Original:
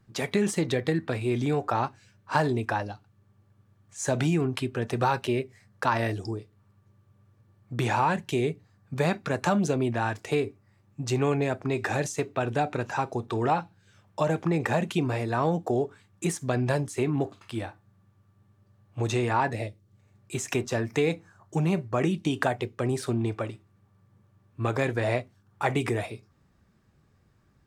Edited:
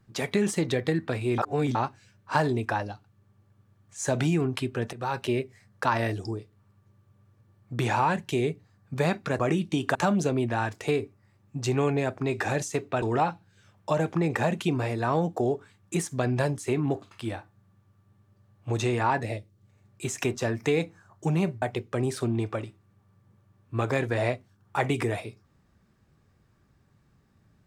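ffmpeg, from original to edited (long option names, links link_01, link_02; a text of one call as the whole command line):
ffmpeg -i in.wav -filter_complex "[0:a]asplit=8[link_01][link_02][link_03][link_04][link_05][link_06][link_07][link_08];[link_01]atrim=end=1.382[link_09];[link_02]atrim=start=1.378:end=1.752,asetpts=PTS-STARTPTS,areverse[link_10];[link_03]atrim=start=1.748:end=4.93,asetpts=PTS-STARTPTS,afade=type=out:start_time=3.178:duration=0.004:curve=hsin:silence=0.11885[link_11];[link_04]atrim=start=4.93:end=9.392,asetpts=PTS-STARTPTS,afade=type=in:duration=0.33:silence=0.11885[link_12];[link_05]atrim=start=21.918:end=22.482[link_13];[link_06]atrim=start=9.388:end=12.462[link_14];[link_07]atrim=start=13.318:end=21.922[link_15];[link_08]atrim=start=22.478[link_16];[link_09][link_10]acrossfade=duration=0.004:curve1=hsin:curve2=hsin[link_17];[link_11][link_12]concat=n=2:v=0:a=1[link_18];[link_17][link_18]acrossfade=duration=0.004:curve1=hsin:curve2=hsin[link_19];[link_19][link_13]acrossfade=duration=0.004:curve1=hsin:curve2=hsin[link_20];[link_20][link_14]acrossfade=duration=0.004:curve1=hsin:curve2=hsin[link_21];[link_21][link_15]acrossfade=duration=0.004:curve1=hsin:curve2=hsin[link_22];[link_22][link_16]acrossfade=duration=0.004:curve1=hsin:curve2=hsin" out.wav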